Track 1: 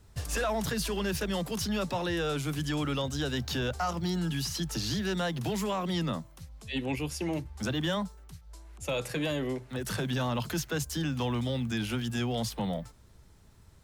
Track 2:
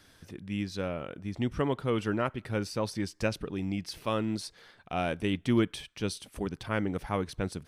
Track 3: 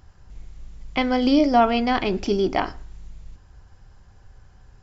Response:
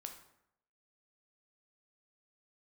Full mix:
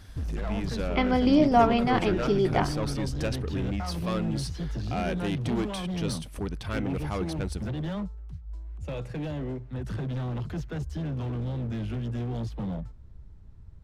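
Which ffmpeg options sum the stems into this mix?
-filter_complex "[0:a]aemphasis=mode=reproduction:type=riaa,volume=22.5dB,asoftclip=hard,volume=-22.5dB,volume=-6dB[a];[1:a]asoftclip=type=tanh:threshold=-28dB,volume=2.5dB[b];[2:a]highshelf=f=5k:g=-11,volume=-3dB[c];[a][b][c]amix=inputs=3:normalize=0"

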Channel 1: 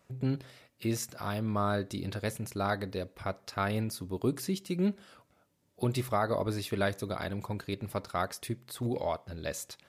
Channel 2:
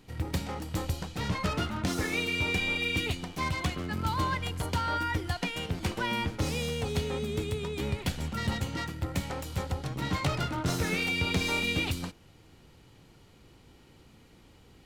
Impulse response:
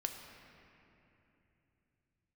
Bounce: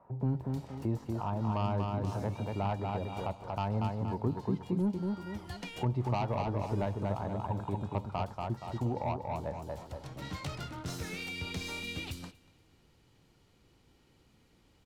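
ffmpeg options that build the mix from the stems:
-filter_complex "[0:a]lowpass=f=900:t=q:w=5.7,asoftclip=type=tanh:threshold=-17dB,volume=2dB,asplit=3[a][b][c];[b]volume=-4.5dB[d];[1:a]adelay=200,volume=-9dB,asplit=2[e][f];[f]volume=-24dB[g];[c]apad=whole_len=663967[h];[e][h]sidechaincompress=threshold=-37dB:ratio=8:attack=5.8:release=676[i];[d][g]amix=inputs=2:normalize=0,aecho=0:1:236|472|708|944|1180:1|0.33|0.109|0.0359|0.0119[j];[a][i][j]amix=inputs=3:normalize=0,equalizer=f=5.4k:w=1.5:g=2,acrossover=split=200|3000[k][l][m];[l]acompressor=threshold=-42dB:ratio=2[n];[k][n][m]amix=inputs=3:normalize=0"

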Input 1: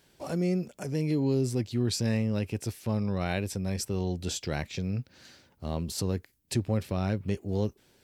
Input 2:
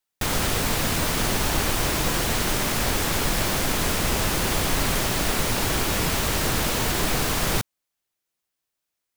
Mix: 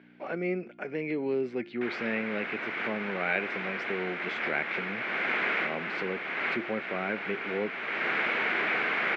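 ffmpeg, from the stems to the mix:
-filter_complex "[0:a]bandreject=f=351.7:t=h:w=4,bandreject=f=703.4:t=h:w=4,bandreject=f=1.0551k:t=h:w=4,bandreject=f=1.4068k:t=h:w=4,bandreject=f=1.7585k:t=h:w=4,bandreject=f=2.1102k:t=h:w=4,bandreject=f=2.4619k:t=h:w=4,bandreject=f=2.8136k:t=h:w=4,bandreject=f=3.1653k:t=h:w=4,bandreject=f=3.517k:t=h:w=4,bandreject=f=3.8687k:t=h:w=4,bandreject=f=4.2204k:t=h:w=4,bandreject=f=4.5721k:t=h:w=4,bandreject=f=4.9238k:t=h:w=4,bandreject=f=5.2755k:t=h:w=4,bandreject=f=5.6272k:t=h:w=4,bandreject=f=5.9789k:t=h:w=4,bandreject=f=6.3306k:t=h:w=4,bandreject=f=6.6823k:t=h:w=4,bandreject=f=7.034k:t=h:w=4,bandreject=f=7.3857k:t=h:w=4,bandreject=f=7.7374k:t=h:w=4,bandreject=f=8.0891k:t=h:w=4,bandreject=f=8.4408k:t=h:w=4,bandreject=f=8.7925k:t=h:w=4,bandreject=f=9.1442k:t=h:w=4,bandreject=f=9.4959k:t=h:w=4,bandreject=f=9.8476k:t=h:w=4,bandreject=f=10.1993k:t=h:w=4,bandreject=f=10.551k:t=h:w=4,bandreject=f=10.9027k:t=h:w=4,bandreject=f=11.2544k:t=h:w=4,bandreject=f=11.6061k:t=h:w=4,bandreject=f=11.9578k:t=h:w=4,bandreject=f=12.3095k:t=h:w=4,acontrast=71,volume=-4dB,asplit=2[a][b];[1:a]equalizer=f=2.1k:w=1.5:g=3,adelay=1600,volume=-4dB[c];[b]apad=whole_len=474843[d];[c][d]sidechaincompress=threshold=-29dB:ratio=8:attack=9.4:release=558[e];[a][e]amix=inputs=2:normalize=0,aeval=exprs='val(0)+0.0112*(sin(2*PI*60*n/s)+sin(2*PI*2*60*n/s)/2+sin(2*PI*3*60*n/s)/3+sin(2*PI*4*60*n/s)/4+sin(2*PI*5*60*n/s)/5)':c=same,highpass=f=250:w=0.5412,highpass=f=250:w=1.3066,equalizer=f=280:t=q:w=4:g=-8,equalizer=f=550:t=q:w=4:g=-3,equalizer=f=960:t=q:w=4:g=-4,equalizer=f=1.5k:t=q:w=4:g=6,equalizer=f=2.2k:t=q:w=4:g=9,lowpass=f=2.7k:w=0.5412,lowpass=f=2.7k:w=1.3066"

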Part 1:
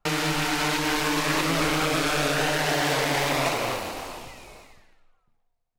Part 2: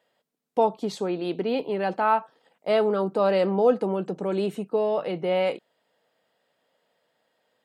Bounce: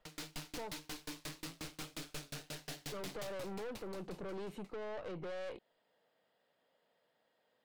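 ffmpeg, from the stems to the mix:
-filter_complex "[0:a]acrossover=split=310|3000[a][b][c];[b]acompressor=threshold=-42dB:ratio=2[d];[a][d][c]amix=inputs=3:normalize=0,asoftclip=type=hard:threshold=-30dB,aeval=exprs='val(0)*pow(10,-39*if(lt(mod(5.6*n/s,1),2*abs(5.6)/1000),1-mod(5.6*n/s,1)/(2*abs(5.6)/1000),(mod(5.6*n/s,1)-2*abs(5.6)/1000)/(1-2*abs(5.6)/1000))/20)':c=same,volume=-0.5dB,afade=t=out:st=3.16:d=0.4:silence=0.473151[e];[1:a]equalizer=f=7.2k:w=0.52:g=-5.5,acompressor=threshold=-29dB:ratio=6,volume=-4dB,asplit=3[f][g][h];[f]atrim=end=0.76,asetpts=PTS-STARTPTS,afade=t=out:st=0.756:d=0.004:c=hsin[i];[g]atrim=start=0.76:end=2.92,asetpts=PTS-STARTPTS,volume=0[j];[h]atrim=start=2.92,asetpts=PTS-STARTPTS,afade=t=in:d=0.004:c=hsin[k];[i][j][k]concat=n=3:v=0:a=1[l];[e][l]amix=inputs=2:normalize=0,equalizer=f=4.2k:w=1.5:g=2.5,aeval=exprs='(tanh(112*val(0)+0.45)-tanh(0.45))/112':c=same"

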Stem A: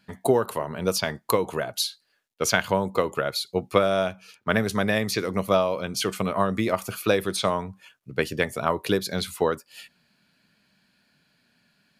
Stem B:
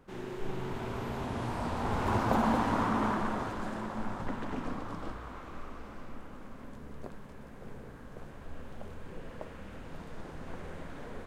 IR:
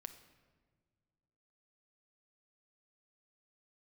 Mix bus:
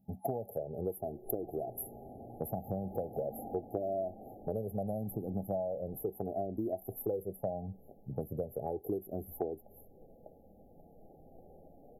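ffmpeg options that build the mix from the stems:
-filter_complex "[0:a]flanger=delay=1:depth=2:regen=18:speed=0.38:shape=sinusoidal,volume=2dB[a];[1:a]lowshelf=f=350:g=-10.5,acontrast=49,adelay=850,volume=-12.5dB[b];[a][b]amix=inputs=2:normalize=0,afftfilt=real='re*(1-between(b*sr/4096,840,11000))':imag='im*(1-between(b*sr/4096,840,11000))':win_size=4096:overlap=0.75,acompressor=threshold=-34dB:ratio=4"

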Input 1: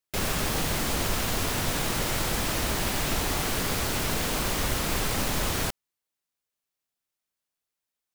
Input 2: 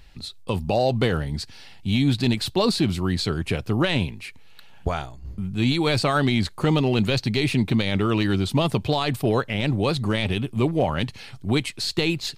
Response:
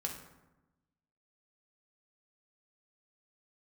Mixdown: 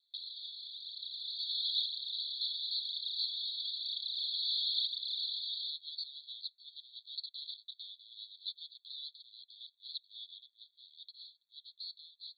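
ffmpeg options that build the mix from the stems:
-filter_complex "[0:a]aphaser=in_gain=1:out_gain=1:delay=3.9:decay=0.73:speed=1:type=triangular,volume=-0.5dB[a];[1:a]asoftclip=type=tanh:threshold=-28.5dB,volume=-12dB,asplit=2[b][c];[c]apad=whole_len=359364[d];[a][d]sidechaincompress=threshold=-58dB:ratio=3:attack=16:release=390[e];[e][b]amix=inputs=2:normalize=0,dynaudnorm=f=100:g=21:m=10dB,asuperpass=centerf=3900:order=20:qfactor=3.2"

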